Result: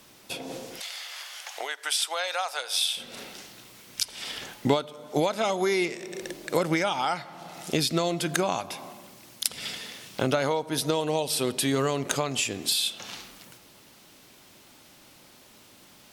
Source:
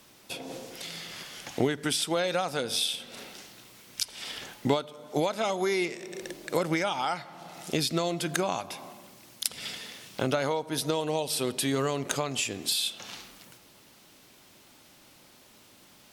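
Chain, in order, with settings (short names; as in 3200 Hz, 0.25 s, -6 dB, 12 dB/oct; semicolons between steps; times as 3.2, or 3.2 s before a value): 0.8–2.97 HPF 690 Hz 24 dB/oct; gain +2.5 dB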